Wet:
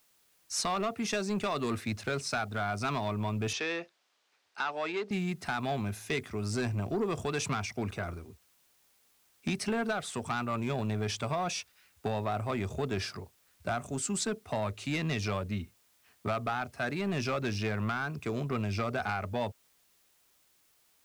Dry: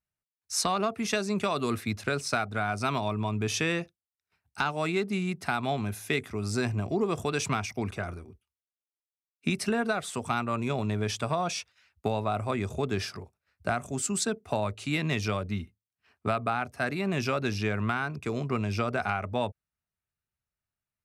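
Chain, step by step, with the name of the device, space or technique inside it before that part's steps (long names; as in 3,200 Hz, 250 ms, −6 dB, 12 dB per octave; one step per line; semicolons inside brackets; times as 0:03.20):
compact cassette (soft clipping −23 dBFS, distortion −14 dB; low-pass filter 9,700 Hz; tape wow and flutter 29 cents; white noise bed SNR 34 dB)
0:03.53–0:05.11: three-way crossover with the lows and the highs turned down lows −22 dB, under 290 Hz, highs −21 dB, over 5,900 Hz
level −1 dB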